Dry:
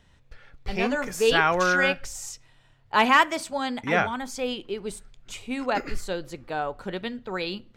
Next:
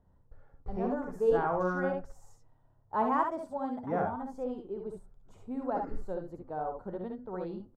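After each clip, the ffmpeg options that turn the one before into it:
ffmpeg -i in.wav -filter_complex "[0:a]firequalizer=gain_entry='entry(860,0);entry(2400,-28);entry(6500,-24);entry(12000,-21)':delay=0.05:min_phase=1,asplit=2[link_01][link_02];[link_02]aecho=0:1:60|71:0.447|0.473[link_03];[link_01][link_03]amix=inputs=2:normalize=0,volume=-7dB" out.wav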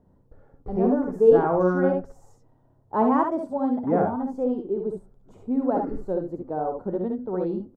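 ffmpeg -i in.wav -af "equalizer=frequency=300:width=0.48:gain=13" out.wav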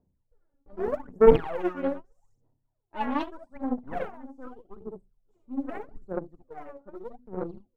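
ffmpeg -i in.wav -af "aeval=exprs='0.531*(cos(1*acos(clip(val(0)/0.531,-1,1)))-cos(1*PI/2))+0.237*(cos(2*acos(clip(val(0)/0.531,-1,1)))-cos(2*PI/2))+0.0596*(cos(7*acos(clip(val(0)/0.531,-1,1)))-cos(7*PI/2))+0.0335*(cos(8*acos(clip(val(0)/0.531,-1,1)))-cos(8*PI/2))':channel_layout=same,aphaser=in_gain=1:out_gain=1:delay=3.6:decay=0.79:speed=0.81:type=sinusoidal,volume=-11dB" out.wav

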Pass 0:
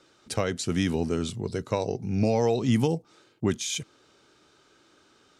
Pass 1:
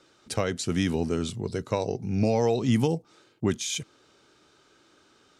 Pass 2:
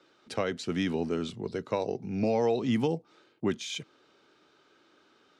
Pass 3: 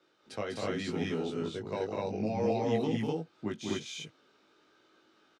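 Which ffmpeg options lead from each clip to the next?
ffmpeg -i in.wav -af anull out.wav
ffmpeg -i in.wav -filter_complex "[0:a]acrossover=split=160 4800:gain=0.251 1 0.2[link_01][link_02][link_03];[link_01][link_02][link_03]amix=inputs=3:normalize=0,volume=-2dB" out.wav
ffmpeg -i in.wav -filter_complex "[0:a]asplit=2[link_01][link_02];[link_02]adelay=19,volume=-3dB[link_03];[link_01][link_03]amix=inputs=2:normalize=0,aecho=1:1:198.3|250.7:0.631|1,volume=-8dB" out.wav

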